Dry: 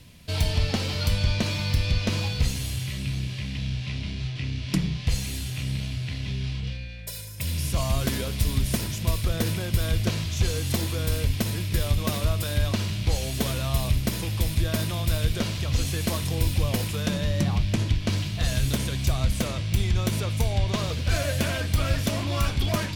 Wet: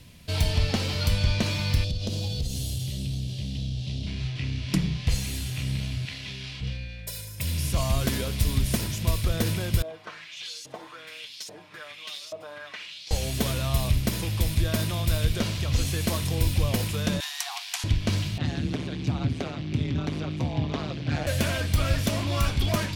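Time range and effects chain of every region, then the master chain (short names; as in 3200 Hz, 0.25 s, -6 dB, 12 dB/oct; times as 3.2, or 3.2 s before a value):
1.84–4.07 band shelf 1500 Hz -15 dB + compressor 4:1, threshold -25 dBFS
6.05–6.61 LPF 2800 Hz 6 dB/oct + tilt +3.5 dB/oct
9.82–13.11 Bessel high-pass 180 Hz + LFO band-pass saw up 1.2 Hz 570–6300 Hz + comb 6.6 ms
17.2–17.84 Chebyshev high-pass 700 Hz, order 10 + high shelf 4000 Hz +9.5 dB
18.38–21.27 LPF 3800 Hz + AM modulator 150 Hz, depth 95% + frequency shift +50 Hz
whole clip: dry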